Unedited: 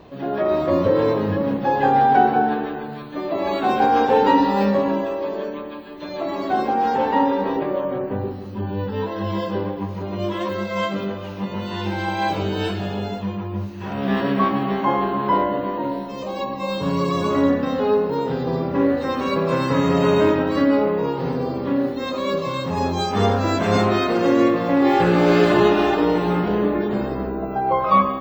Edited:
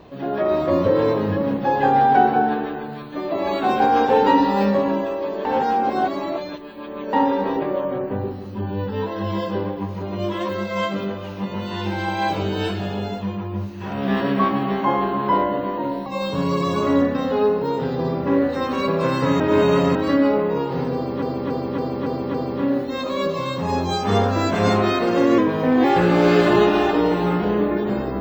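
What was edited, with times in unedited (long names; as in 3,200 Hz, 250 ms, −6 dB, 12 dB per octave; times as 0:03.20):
0:05.45–0:07.13: reverse
0:16.06–0:16.54: remove
0:19.88–0:20.43: reverse
0:21.42–0:21.70: repeat, 6 plays
0:24.46–0:24.88: play speed 91%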